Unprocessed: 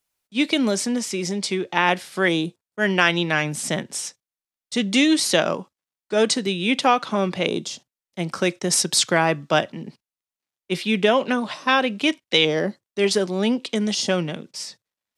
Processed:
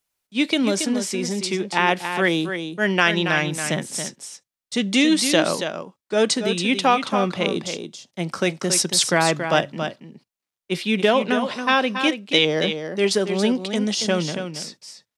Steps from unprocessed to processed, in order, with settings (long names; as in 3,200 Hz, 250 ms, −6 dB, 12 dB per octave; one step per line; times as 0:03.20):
0:01.64–0:03.65: de-essing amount 40%
on a send: single-tap delay 278 ms −8 dB